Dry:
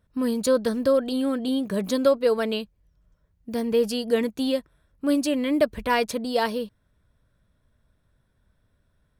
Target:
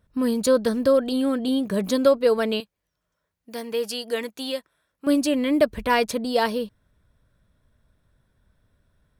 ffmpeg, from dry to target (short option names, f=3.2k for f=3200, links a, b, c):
-filter_complex "[0:a]asettb=1/sr,asplit=3[a][b][c];[a]atrim=end=2.604[d];[b]atrim=start=2.6:end=5.07,asetpts=PTS-STARTPTS,afade=t=in:d=0.004:c=qsin,afade=t=out:st=2.466:d=0.004:c=qsin,highpass=f=880:p=1[e];[c]atrim=start=5.066[f];[d][e]acrossfade=d=0.004:c1=hsin:c2=qsin[g];[g][f]acrossfade=d=0.004:c1=qsin:c2=hsin,volume=2dB"